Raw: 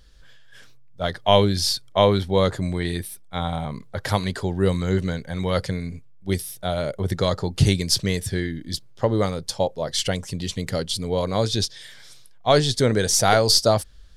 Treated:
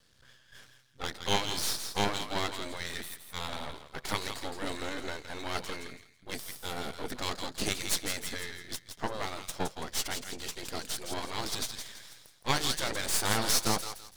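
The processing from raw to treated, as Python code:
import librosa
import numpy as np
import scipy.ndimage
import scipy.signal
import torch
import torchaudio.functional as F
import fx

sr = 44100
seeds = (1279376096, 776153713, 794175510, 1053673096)

y = fx.spec_gate(x, sr, threshold_db=-10, keep='weak')
y = fx.echo_thinned(y, sr, ms=166, feedback_pct=33, hz=1200.0, wet_db=-7)
y = np.maximum(y, 0.0)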